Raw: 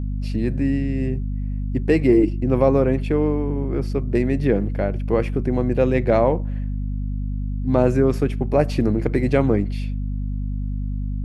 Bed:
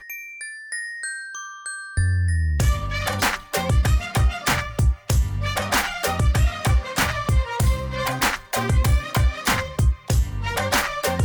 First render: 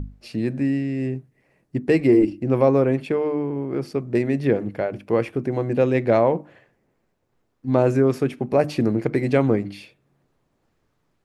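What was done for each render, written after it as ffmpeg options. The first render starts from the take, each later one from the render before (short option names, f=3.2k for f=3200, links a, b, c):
-af "bandreject=f=50:t=h:w=6,bandreject=f=100:t=h:w=6,bandreject=f=150:t=h:w=6,bandreject=f=200:t=h:w=6,bandreject=f=250:t=h:w=6,bandreject=f=300:t=h:w=6"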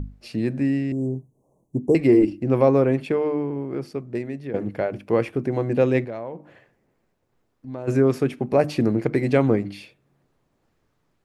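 -filter_complex "[0:a]asettb=1/sr,asplit=3[a][b][c];[a]atrim=end=0.924[d];[b]atrim=start=0.92:end=1.95,asetpts=PTS-STARTPTS,afade=t=in:d=0.004:c=qsin,afade=t=out:st=1.026:d=0.004:c=qsin,asuperstop=centerf=2600:order=20:qfactor=0.53[e];[c]atrim=start=1.946[f];[d][e]acrossfade=d=0.004:c1=hsin:c2=qsin[g];[g][f]acrossfade=d=0.004:c1=qsin:c2=hsin,asplit=3[h][i][j];[h]afade=t=out:st=6.04:d=0.02[k];[i]acompressor=threshold=-41dB:ratio=2:attack=3.2:release=140:knee=1:detection=peak,afade=t=in:st=6.04:d=0.02,afade=t=out:st=7.87:d=0.02[l];[j]afade=t=in:st=7.87:d=0.02[m];[k][l][m]amix=inputs=3:normalize=0,asplit=2[n][o];[n]atrim=end=4.54,asetpts=PTS-STARTPTS,afade=t=out:st=3.3:d=1.24:silence=0.199526[p];[o]atrim=start=4.54,asetpts=PTS-STARTPTS,afade=t=in:d=0.004:c=hsin:silence=0.199526[q];[p][q]concat=n=2:v=0:a=1"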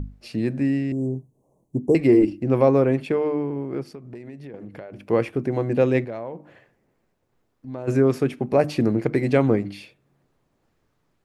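-filter_complex "[0:a]asplit=3[a][b][c];[a]afade=t=out:st=3.82:d=0.02[d];[b]acompressor=threshold=-34dB:ratio=8:attack=3.2:release=140:knee=1:detection=peak,afade=t=in:st=3.82:d=0.02,afade=t=out:st=5.05:d=0.02[e];[c]afade=t=in:st=5.05:d=0.02[f];[d][e][f]amix=inputs=3:normalize=0"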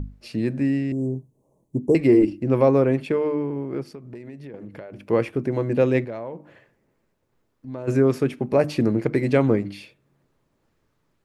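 -af "bandreject=f=740:w=12"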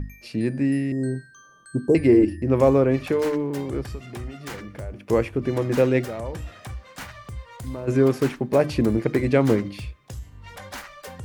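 -filter_complex "[1:a]volume=-16.5dB[a];[0:a][a]amix=inputs=2:normalize=0"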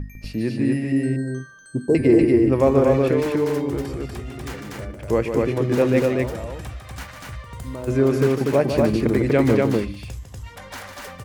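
-af "aecho=1:1:151.6|242:0.398|0.794"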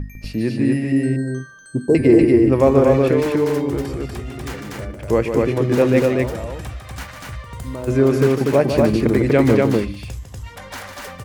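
-af "volume=3dB"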